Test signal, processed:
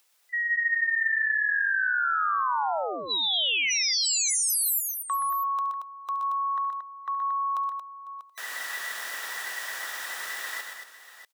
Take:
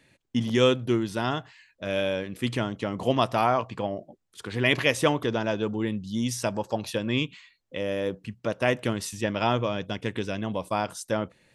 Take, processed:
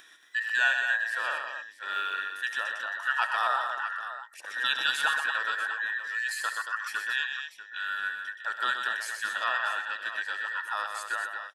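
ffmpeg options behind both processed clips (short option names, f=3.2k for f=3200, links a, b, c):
-af "afftfilt=real='real(if(between(b,1,1012),(2*floor((b-1)/92)+1)*92-b,b),0)':imag='imag(if(between(b,1,1012),(2*floor((b-1)/92)+1)*92-b,b),0)*if(between(b,1,1012),-1,1)':win_size=2048:overlap=0.75,highpass=640,acompressor=mode=upward:threshold=-39dB:ratio=2.5,aecho=1:1:70|124|228|641:0.158|0.473|0.422|0.224,volume=-5dB"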